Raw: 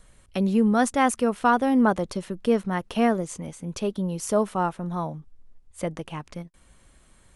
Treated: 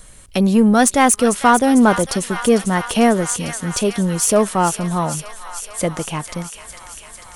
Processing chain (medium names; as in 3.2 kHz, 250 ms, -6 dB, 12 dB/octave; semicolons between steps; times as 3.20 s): treble shelf 5 kHz +10.5 dB; feedback echo behind a high-pass 449 ms, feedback 75%, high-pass 1.5 kHz, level -9 dB; in parallel at -3 dB: saturation -23.5 dBFS, distortion -7 dB; on the sum: trim +5 dB